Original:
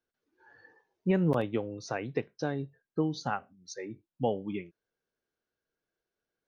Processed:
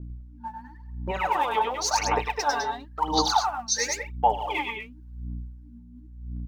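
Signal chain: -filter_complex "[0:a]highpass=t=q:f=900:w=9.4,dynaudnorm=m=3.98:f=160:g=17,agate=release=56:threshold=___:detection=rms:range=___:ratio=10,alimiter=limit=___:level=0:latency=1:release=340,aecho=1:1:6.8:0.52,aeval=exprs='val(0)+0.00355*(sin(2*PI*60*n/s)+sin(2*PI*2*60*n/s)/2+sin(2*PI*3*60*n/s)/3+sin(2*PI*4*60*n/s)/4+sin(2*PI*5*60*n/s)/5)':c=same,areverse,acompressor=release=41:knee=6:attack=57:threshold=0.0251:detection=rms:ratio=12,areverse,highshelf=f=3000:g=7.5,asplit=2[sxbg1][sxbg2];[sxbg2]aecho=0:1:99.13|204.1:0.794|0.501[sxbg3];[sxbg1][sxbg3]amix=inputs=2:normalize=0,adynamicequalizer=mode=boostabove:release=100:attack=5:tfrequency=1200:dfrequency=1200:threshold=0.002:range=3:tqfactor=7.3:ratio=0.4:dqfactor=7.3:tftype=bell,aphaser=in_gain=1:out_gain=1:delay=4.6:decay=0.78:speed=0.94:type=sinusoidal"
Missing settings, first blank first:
0.00501, 0.141, 0.251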